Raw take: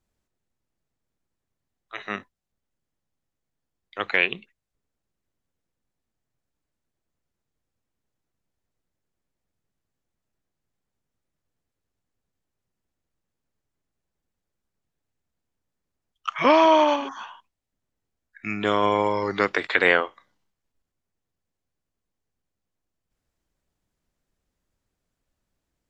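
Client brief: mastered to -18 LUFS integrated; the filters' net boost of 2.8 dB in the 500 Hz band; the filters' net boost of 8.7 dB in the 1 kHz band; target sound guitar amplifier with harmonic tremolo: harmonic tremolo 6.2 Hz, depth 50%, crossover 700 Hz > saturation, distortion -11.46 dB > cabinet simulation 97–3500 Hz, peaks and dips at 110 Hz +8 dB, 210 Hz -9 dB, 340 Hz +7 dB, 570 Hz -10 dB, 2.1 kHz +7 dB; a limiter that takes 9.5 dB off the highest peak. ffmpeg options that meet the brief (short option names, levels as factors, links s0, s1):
-filter_complex "[0:a]equalizer=f=500:t=o:g=6,equalizer=f=1000:t=o:g=8.5,alimiter=limit=0.422:level=0:latency=1,acrossover=split=700[s0][s1];[s0]aeval=exprs='val(0)*(1-0.5/2+0.5/2*cos(2*PI*6.2*n/s))':c=same[s2];[s1]aeval=exprs='val(0)*(1-0.5/2-0.5/2*cos(2*PI*6.2*n/s))':c=same[s3];[s2][s3]amix=inputs=2:normalize=0,asoftclip=threshold=0.133,highpass=97,equalizer=f=110:t=q:w=4:g=8,equalizer=f=210:t=q:w=4:g=-9,equalizer=f=340:t=q:w=4:g=7,equalizer=f=570:t=q:w=4:g=-10,equalizer=f=2100:t=q:w=4:g=7,lowpass=f=3500:w=0.5412,lowpass=f=3500:w=1.3066,volume=2.66"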